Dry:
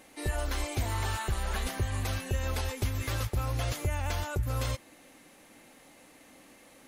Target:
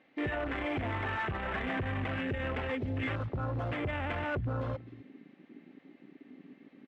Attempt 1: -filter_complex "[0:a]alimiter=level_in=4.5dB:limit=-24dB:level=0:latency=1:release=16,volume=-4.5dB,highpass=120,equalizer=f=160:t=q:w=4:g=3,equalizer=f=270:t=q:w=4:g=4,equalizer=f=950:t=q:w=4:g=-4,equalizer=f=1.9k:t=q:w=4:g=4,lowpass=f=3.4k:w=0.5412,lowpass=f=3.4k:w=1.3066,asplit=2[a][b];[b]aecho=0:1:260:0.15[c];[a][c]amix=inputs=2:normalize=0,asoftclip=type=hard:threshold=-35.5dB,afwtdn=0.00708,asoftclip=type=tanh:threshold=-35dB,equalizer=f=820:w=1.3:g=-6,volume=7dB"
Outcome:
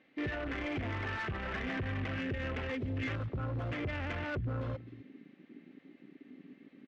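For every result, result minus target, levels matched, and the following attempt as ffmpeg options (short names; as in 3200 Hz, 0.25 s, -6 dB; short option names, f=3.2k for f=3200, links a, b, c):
soft clip: distortion +22 dB; 1000 Hz band -3.5 dB
-filter_complex "[0:a]alimiter=level_in=4.5dB:limit=-24dB:level=0:latency=1:release=16,volume=-4.5dB,highpass=120,equalizer=f=160:t=q:w=4:g=3,equalizer=f=270:t=q:w=4:g=4,equalizer=f=950:t=q:w=4:g=-4,equalizer=f=1.9k:t=q:w=4:g=4,lowpass=f=3.4k:w=0.5412,lowpass=f=3.4k:w=1.3066,asplit=2[a][b];[b]aecho=0:1:260:0.15[c];[a][c]amix=inputs=2:normalize=0,asoftclip=type=hard:threshold=-35.5dB,afwtdn=0.00708,asoftclip=type=tanh:threshold=-23dB,equalizer=f=820:w=1.3:g=-6,volume=7dB"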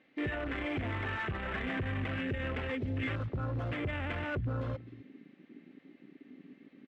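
1000 Hz band -3.5 dB
-filter_complex "[0:a]alimiter=level_in=4.5dB:limit=-24dB:level=0:latency=1:release=16,volume=-4.5dB,highpass=120,equalizer=f=160:t=q:w=4:g=3,equalizer=f=270:t=q:w=4:g=4,equalizer=f=950:t=q:w=4:g=-4,equalizer=f=1.9k:t=q:w=4:g=4,lowpass=f=3.4k:w=0.5412,lowpass=f=3.4k:w=1.3066,asplit=2[a][b];[b]aecho=0:1:260:0.15[c];[a][c]amix=inputs=2:normalize=0,asoftclip=type=hard:threshold=-35.5dB,afwtdn=0.00708,asoftclip=type=tanh:threshold=-23dB,volume=7dB"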